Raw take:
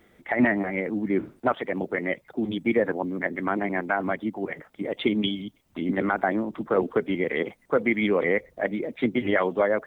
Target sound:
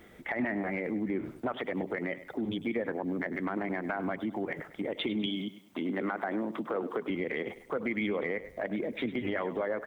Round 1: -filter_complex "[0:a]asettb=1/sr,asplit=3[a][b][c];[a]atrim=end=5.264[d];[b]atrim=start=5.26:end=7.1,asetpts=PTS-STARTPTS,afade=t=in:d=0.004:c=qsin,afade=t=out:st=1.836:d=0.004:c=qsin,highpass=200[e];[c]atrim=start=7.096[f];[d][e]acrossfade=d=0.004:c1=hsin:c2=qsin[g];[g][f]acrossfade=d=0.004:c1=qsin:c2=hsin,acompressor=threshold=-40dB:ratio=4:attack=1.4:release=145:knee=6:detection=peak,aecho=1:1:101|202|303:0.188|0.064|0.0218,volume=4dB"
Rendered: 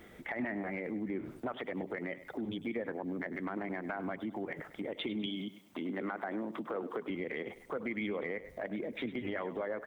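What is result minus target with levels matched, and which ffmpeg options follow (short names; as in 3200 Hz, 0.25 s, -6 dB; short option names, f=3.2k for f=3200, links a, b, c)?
compressor: peak gain reduction +5 dB
-filter_complex "[0:a]asettb=1/sr,asplit=3[a][b][c];[a]atrim=end=5.264[d];[b]atrim=start=5.26:end=7.1,asetpts=PTS-STARTPTS,afade=t=in:d=0.004:c=qsin,afade=t=out:st=1.836:d=0.004:c=qsin,highpass=200[e];[c]atrim=start=7.096[f];[d][e]acrossfade=d=0.004:c1=hsin:c2=qsin[g];[g][f]acrossfade=d=0.004:c1=qsin:c2=hsin,acompressor=threshold=-33.5dB:ratio=4:attack=1.4:release=145:knee=6:detection=peak,aecho=1:1:101|202|303:0.188|0.064|0.0218,volume=4dB"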